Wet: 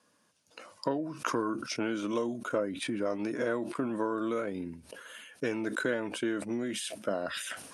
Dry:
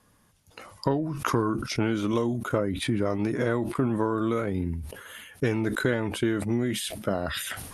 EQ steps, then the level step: cabinet simulation 330–9000 Hz, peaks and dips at 400 Hz -6 dB, 810 Hz -8 dB, 1.2 kHz -5 dB, 2 kHz -7 dB, 3.4 kHz -4 dB, 7.2 kHz -3 dB; dynamic bell 4.3 kHz, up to -5 dB, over -56 dBFS, Q 2.6; 0.0 dB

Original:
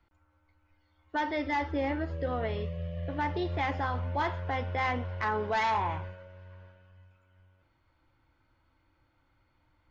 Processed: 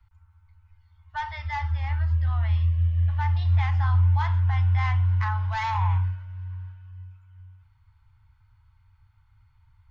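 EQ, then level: elliptic band-stop 100–900 Hz, stop band 40 dB; peaking EQ 160 Hz +14 dB 1.2 oct; bass shelf 320 Hz +11.5 dB; 0.0 dB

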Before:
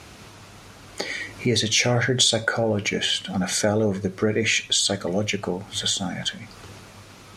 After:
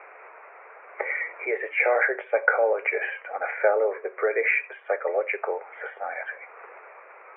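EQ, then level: steep high-pass 440 Hz 48 dB/octave; steep low-pass 2.4 kHz 96 dB/octave; +3.0 dB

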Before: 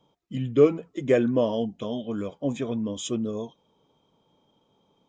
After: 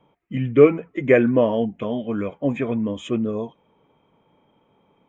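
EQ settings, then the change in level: resonant high shelf 3.2 kHz -13 dB, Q 3; +5.0 dB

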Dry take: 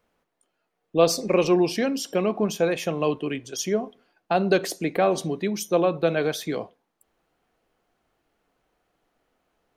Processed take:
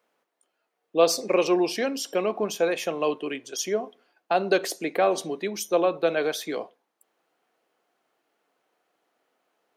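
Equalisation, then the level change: high-pass 330 Hz 12 dB/octave; 0.0 dB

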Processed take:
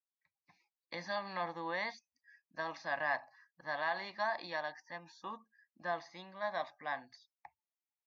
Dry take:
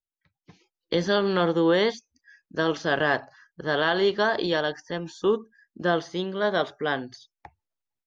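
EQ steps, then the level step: band-pass filter 1.5 kHz, Q 0.66; static phaser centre 2.1 kHz, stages 8; -5.5 dB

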